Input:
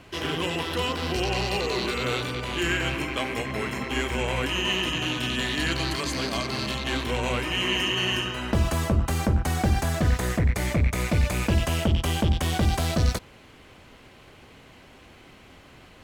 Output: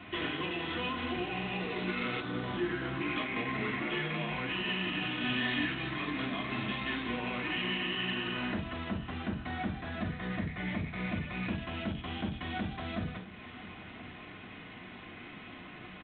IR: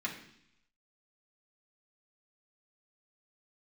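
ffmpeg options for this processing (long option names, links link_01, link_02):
-filter_complex "[0:a]asettb=1/sr,asplit=3[link_01][link_02][link_03];[link_01]atrim=end=2.204[link_04];[link_02]atrim=start=2.2:end=3.01,asetpts=PTS-STARTPTS,afade=type=in:duration=0.004:curve=qsin,afade=type=out:start_time=0.806:duration=0.004:curve=qsin,equalizer=frequency=2500:width_type=o:width=0.71:gain=-14[link_05];[link_03]atrim=start=3.006[link_06];[link_04][link_05]acrossfade=duration=0.004:curve1=hsin:curve2=qsin[link_07];[link_07][link_06]acrossfade=duration=0.004:curve1=qsin:curve2=hsin,acompressor=threshold=-33dB:ratio=16,asplit=3[link_08][link_09][link_10];[link_08]afade=type=out:start_time=3.78:duration=0.02[link_11];[link_09]afreqshift=89,afade=type=in:start_time=3.78:duration=0.02,afade=type=out:start_time=4.29:duration=0.02[link_12];[link_10]afade=type=in:start_time=4.29:duration=0.02[link_13];[link_11][link_12][link_13]amix=inputs=3:normalize=0,asettb=1/sr,asplit=3[link_14][link_15][link_16];[link_14]atrim=end=5.224[link_17];[link_15]atrim=start=5.22:end=5.64,asetpts=PTS-STARTPTS,afade=type=in:duration=0.004:curve=qsin,afade=type=out:start_time=0.416:duration=0.004:curve=qsin,asplit=2[link_18][link_19];[link_19]adelay=24,volume=-2dB[link_20];[link_18][link_20]amix=inputs=2:normalize=0,atrim=end_sample=18522[link_21];[link_16]atrim=start=5.636[link_22];[link_17][link_21]acrossfade=duration=0.004:curve1=hsin:curve2=qsin[link_23];[link_23][link_22]acrossfade=duration=0.004:curve1=qsin:curve2=hsin,asplit=2[link_24][link_25];[link_25]adelay=1030,lowpass=frequency=2700:poles=1,volume=-16dB,asplit=2[link_26][link_27];[link_27]adelay=1030,lowpass=frequency=2700:poles=1,volume=0.19[link_28];[link_24][link_26][link_28]amix=inputs=3:normalize=0[link_29];[1:a]atrim=start_sample=2205,atrim=end_sample=3528[link_30];[link_29][link_30]afir=irnorm=-1:irlink=0" -ar 8000 -c:a adpcm_g726 -b:a 24k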